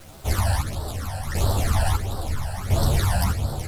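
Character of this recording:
phaser sweep stages 12, 1.5 Hz, lowest notch 360–2,300 Hz
a quantiser's noise floor 8 bits, dither none
chopped level 0.74 Hz, depth 60%, duty 45%
a shimmering, thickened sound

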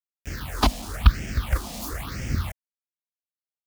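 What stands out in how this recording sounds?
a quantiser's noise floor 6 bits, dither none
phaser sweep stages 6, 1 Hz, lowest notch 100–1,100 Hz

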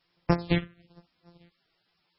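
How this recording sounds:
a buzz of ramps at a fixed pitch in blocks of 256 samples
phaser sweep stages 4, 1.1 Hz, lowest notch 780–4,000 Hz
a quantiser's noise floor 12 bits, dither triangular
MP3

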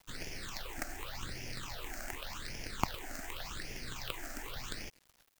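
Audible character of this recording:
aliases and images of a low sample rate 11,000 Hz, jitter 0%
phaser sweep stages 8, 0.87 Hz, lowest notch 130–1,200 Hz
a quantiser's noise floor 10 bits, dither none

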